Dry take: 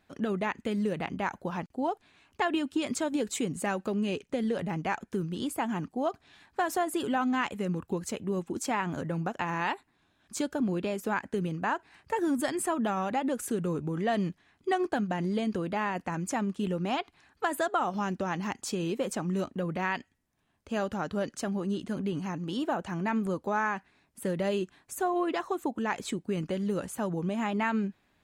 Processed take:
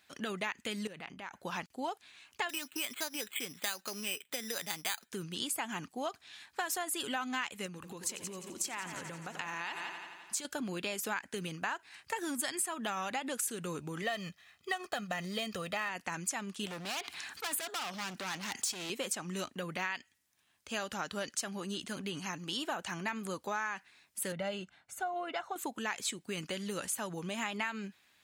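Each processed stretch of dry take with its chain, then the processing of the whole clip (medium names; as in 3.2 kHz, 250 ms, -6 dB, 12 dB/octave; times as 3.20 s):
0.87–1.43 s: treble shelf 3.8 kHz -8 dB + compression 8:1, threshold -38 dBFS
2.49–5.09 s: tilt EQ +3 dB/octave + careless resampling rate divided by 8×, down filtered, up hold
7.66–10.45 s: multi-head delay 86 ms, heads first and second, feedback 59%, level -15 dB + compression, threshold -34 dBFS
14.02–15.89 s: median filter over 5 samples + comb 1.6 ms, depth 60%
16.66–18.90 s: high-pass 100 Hz + hard clipper -34 dBFS + level flattener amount 50%
24.32–25.56 s: low-pass 1.1 kHz 6 dB/octave + comb 1.4 ms, depth 59%
whole clip: high-pass 60 Hz; tilt shelf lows -10 dB, about 1.2 kHz; compression 5:1, threshold -32 dBFS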